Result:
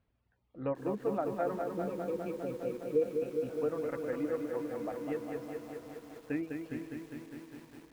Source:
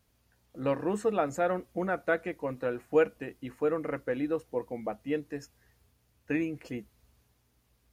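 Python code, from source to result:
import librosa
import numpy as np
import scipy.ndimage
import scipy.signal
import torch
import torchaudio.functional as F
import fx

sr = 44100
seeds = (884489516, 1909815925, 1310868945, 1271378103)

p1 = fx.air_absorb(x, sr, metres=350.0)
p2 = fx.env_lowpass_down(p1, sr, base_hz=1200.0, full_db=-24.0)
p3 = fx.dereverb_blind(p2, sr, rt60_s=1.3)
p4 = p3 + fx.echo_diffused(p3, sr, ms=459, feedback_pct=61, wet_db=-13, dry=0)
p5 = fx.spec_erase(p4, sr, start_s=1.62, length_s=1.87, low_hz=590.0, high_hz=2200.0)
p6 = fx.echo_crushed(p5, sr, ms=203, feedback_pct=80, bits=9, wet_db=-5)
y = p6 * 10.0 ** (-4.0 / 20.0)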